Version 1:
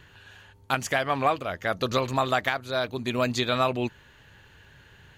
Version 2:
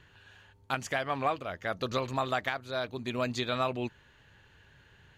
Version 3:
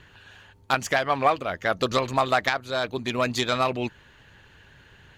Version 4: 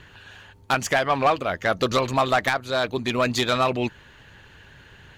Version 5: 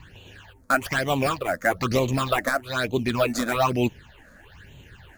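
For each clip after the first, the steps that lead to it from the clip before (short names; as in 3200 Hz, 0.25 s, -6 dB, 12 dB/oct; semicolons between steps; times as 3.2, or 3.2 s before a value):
high shelf 12000 Hz -11 dB; gain -6 dB
self-modulated delay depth 0.07 ms; harmonic-percussive split percussive +5 dB; gain +4.5 dB
soft clip -15.5 dBFS, distortion -14 dB; gain +4 dB
in parallel at -7 dB: decimation with a swept rate 15×, swing 100% 1 Hz; on the sum: phaser stages 8, 1.1 Hz, lowest notch 110–1600 Hz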